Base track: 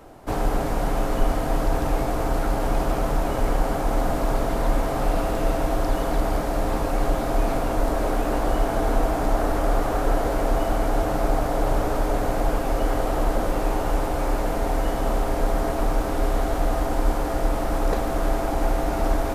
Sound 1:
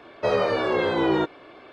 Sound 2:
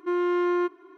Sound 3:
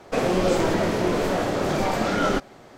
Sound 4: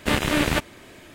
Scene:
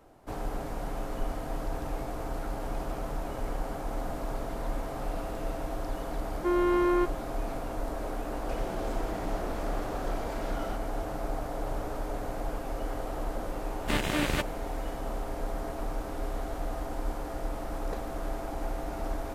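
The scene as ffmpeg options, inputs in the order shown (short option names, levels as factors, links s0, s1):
-filter_complex "[0:a]volume=0.266[s0];[3:a]acompressor=threshold=0.0282:ratio=6:attack=3.2:release=140:knee=1:detection=peak[s1];[2:a]atrim=end=0.97,asetpts=PTS-STARTPTS,volume=0.891,afade=t=in:d=0.004:c=hsin,afade=t=out:st=0.966:d=0.004:c=hsin,adelay=6380[s2];[s1]atrim=end=2.77,asetpts=PTS-STARTPTS,volume=0.473,afade=t=in:d=0.004:c=hsin,afade=t=out:st=2.766:d=0.004:c=hsin,adelay=8370[s3];[4:a]atrim=end=1.14,asetpts=PTS-STARTPTS,volume=0.422,afade=t=in:d=0.004:c=hsin,afade=t=out:st=1.136:d=0.004:c=hsin,adelay=13820[s4];[s0][s2][s3][s4]amix=inputs=4:normalize=0"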